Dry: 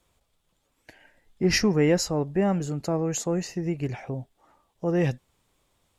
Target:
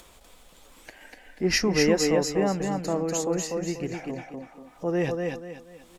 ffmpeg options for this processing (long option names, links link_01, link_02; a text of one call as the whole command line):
ffmpeg -i in.wav -filter_complex "[0:a]equalizer=frequency=110:width_type=o:width=1.2:gain=-11,asplit=2[link_01][link_02];[link_02]aecho=0:1:241|482|723:0.316|0.0791|0.0198[link_03];[link_01][link_03]amix=inputs=2:normalize=0,acompressor=mode=upward:threshold=-38dB:ratio=2.5,asplit=2[link_04][link_05];[link_05]aecho=0:1:245:0.631[link_06];[link_04][link_06]amix=inputs=2:normalize=0" out.wav